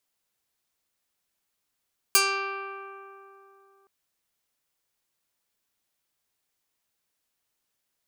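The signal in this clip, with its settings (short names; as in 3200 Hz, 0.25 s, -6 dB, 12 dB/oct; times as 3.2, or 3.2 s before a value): plucked string G4, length 1.72 s, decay 3.20 s, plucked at 0.2, medium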